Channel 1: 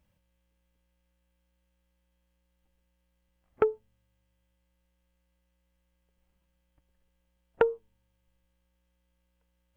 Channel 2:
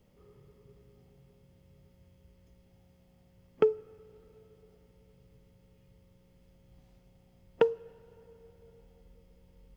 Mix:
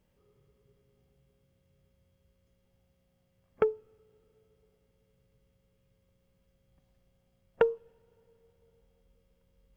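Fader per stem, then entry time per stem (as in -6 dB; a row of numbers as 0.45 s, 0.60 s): -2.0 dB, -9.5 dB; 0.00 s, 0.00 s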